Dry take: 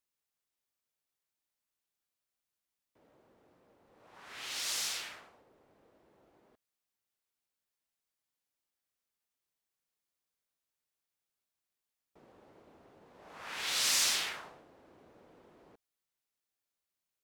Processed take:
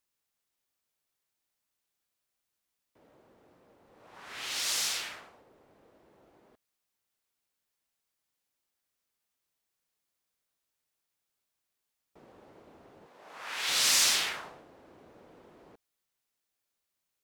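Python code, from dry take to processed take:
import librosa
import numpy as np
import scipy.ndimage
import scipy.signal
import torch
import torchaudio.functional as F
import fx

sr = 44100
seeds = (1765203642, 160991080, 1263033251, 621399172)

y = fx.highpass(x, sr, hz=510.0, slope=6, at=(13.06, 13.69))
y = F.gain(torch.from_numpy(y), 4.5).numpy()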